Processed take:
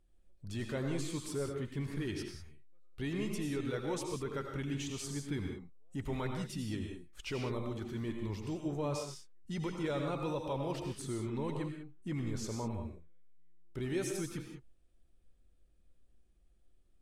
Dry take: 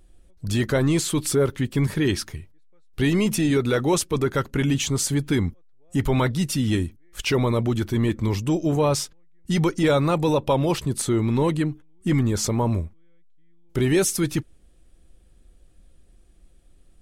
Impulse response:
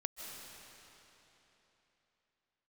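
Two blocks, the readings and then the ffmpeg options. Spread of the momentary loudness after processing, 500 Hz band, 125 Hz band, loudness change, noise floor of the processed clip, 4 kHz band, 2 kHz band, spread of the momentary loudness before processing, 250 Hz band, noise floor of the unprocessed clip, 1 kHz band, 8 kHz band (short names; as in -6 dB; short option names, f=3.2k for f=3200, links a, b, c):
9 LU, -15.0 dB, -16.0 dB, -15.5 dB, -66 dBFS, -16.0 dB, -15.5 dB, 8 LU, -15.5 dB, -54 dBFS, -15.0 dB, -18.0 dB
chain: -filter_complex "[0:a]highshelf=f=11k:g=-10.5[a];[1:a]atrim=start_sample=2205,afade=t=out:st=0.44:d=0.01,atrim=end_sample=19845,asetrate=83790,aresample=44100[b];[a][b]afir=irnorm=-1:irlink=0,volume=-8.5dB"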